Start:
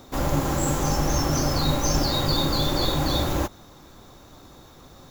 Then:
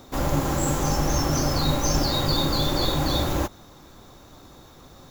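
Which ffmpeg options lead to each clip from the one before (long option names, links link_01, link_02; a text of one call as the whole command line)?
ffmpeg -i in.wav -af anull out.wav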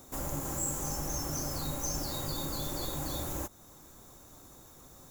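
ffmpeg -i in.wav -af "highshelf=frequency=5900:width_type=q:width=1.5:gain=11,acompressor=threshold=-34dB:ratio=1.5,volume=-8dB" out.wav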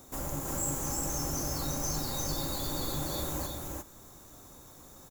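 ffmpeg -i in.wav -af "aecho=1:1:350:0.708" out.wav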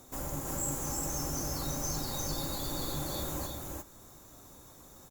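ffmpeg -i in.wav -af "volume=-1.5dB" -ar 48000 -c:a libopus -b:a 64k out.opus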